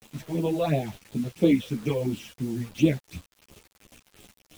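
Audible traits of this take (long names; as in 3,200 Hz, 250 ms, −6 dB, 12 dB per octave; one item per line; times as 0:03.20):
phaser sweep stages 8, 2.9 Hz, lowest notch 250–1,900 Hz
a quantiser's noise floor 8 bits, dither none
a shimmering, thickened sound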